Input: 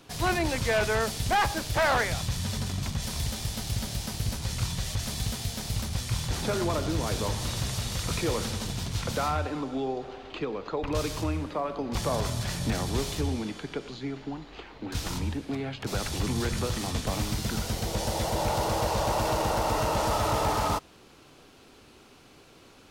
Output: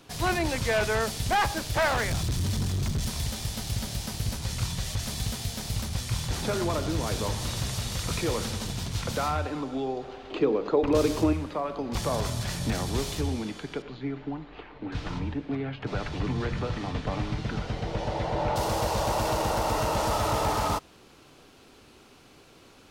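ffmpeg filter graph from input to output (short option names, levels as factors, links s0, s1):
-filter_complex "[0:a]asettb=1/sr,asplit=3[s0][s1][s2];[s0]atrim=end=1.884[s3];[s1]atrim=start=1.88:end=3.1,asetpts=PTS-STARTPTS,afade=t=in:d=0.004:c=qsin,afade=t=out:st=1.216:d=0.004:c=qsin,bass=f=250:g=7,treble=f=4000:g=2,volume=15.8,asoftclip=hard,volume=0.0631,acrusher=bits=8:mode=log:mix=0:aa=0.000001[s4];[s2]atrim=start=3.096[s5];[s3][s4]acrossfade=d=0.004:c1=hsin:c2=qsin[s6];[s6][s5]acrossfade=d=0.004:c1=qsin:c2=hsin,asettb=1/sr,asplit=3[s7][s8][s9];[s7]atrim=end=10.304[s10];[s8]atrim=start=10.3:end=11.33,asetpts=PTS-STARTPTS,afade=t=in:d=0.004:c=qsin,afade=t=out:st=1.026:d=0.004:c=qsin,equalizer=f=350:t=o:w=1.9:g=10.5,bandreject=f=50:t=h:w=6,bandreject=f=100:t=h:w=6,bandreject=f=150:t=h:w=6,bandreject=f=200:t=h:w=6,bandreject=f=250:t=h:w=6,bandreject=f=300:t=h:w=6,bandreject=f=350:t=h:w=6[s11];[s9]atrim=start=11.326[s12];[s10][s11]acrossfade=d=0.004:c1=hsin:c2=qsin[s13];[s13][s12]acrossfade=d=0.004:c1=qsin:c2=hsin,asettb=1/sr,asplit=3[s14][s15][s16];[s14]atrim=end=13.824[s17];[s15]atrim=start=13.82:end=18.56,asetpts=PTS-STARTPTS,afade=t=in:d=0.004:c=qsin,afade=t=out:st=4.736:d=0.004:c=qsin,lowpass=2700,aecho=1:1:6.8:0.31,atrim=end_sample=209034[s18];[s16]atrim=start=18.556[s19];[s17][s18]acrossfade=d=0.004:c1=hsin:c2=qsin[s20];[s20][s19]acrossfade=d=0.004:c1=qsin:c2=hsin"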